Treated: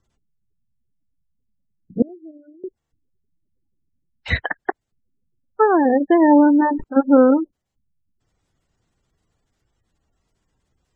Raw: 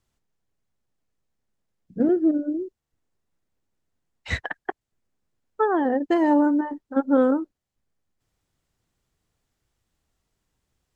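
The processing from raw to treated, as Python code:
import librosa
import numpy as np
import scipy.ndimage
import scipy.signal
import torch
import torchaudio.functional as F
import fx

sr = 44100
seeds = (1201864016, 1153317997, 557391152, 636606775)

y = fx.spec_gate(x, sr, threshold_db=-25, keep='strong')
y = fx.differentiator(y, sr, at=(2.02, 2.64))
y = fx.sustainer(y, sr, db_per_s=46.0, at=(6.21, 6.84))
y = y * 10.0 ** (6.5 / 20.0)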